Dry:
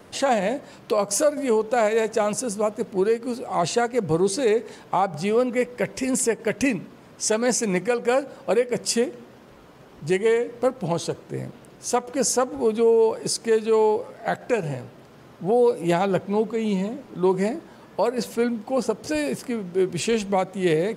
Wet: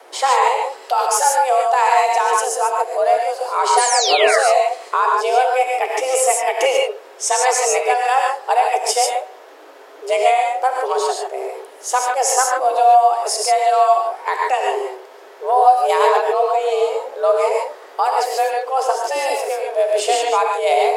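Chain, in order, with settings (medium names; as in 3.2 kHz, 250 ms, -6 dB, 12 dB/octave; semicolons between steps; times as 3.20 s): painted sound fall, 3.77–4.39 s, 880–10000 Hz -26 dBFS; gated-style reverb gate 170 ms rising, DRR -0.5 dB; frequency shift +260 Hz; trim +3.5 dB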